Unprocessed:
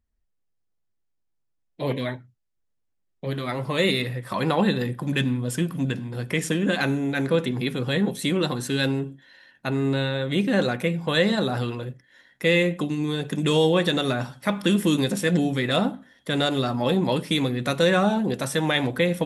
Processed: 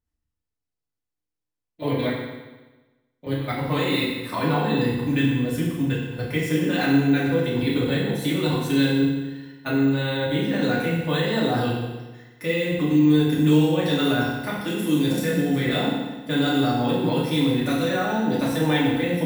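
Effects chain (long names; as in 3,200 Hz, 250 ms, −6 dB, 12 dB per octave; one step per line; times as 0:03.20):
output level in coarse steps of 14 dB
feedback delay network reverb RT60 1.2 s, low-frequency decay 1.05×, high-frequency decay 0.95×, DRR −7 dB
bad sample-rate conversion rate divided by 2×, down none, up hold
level −2 dB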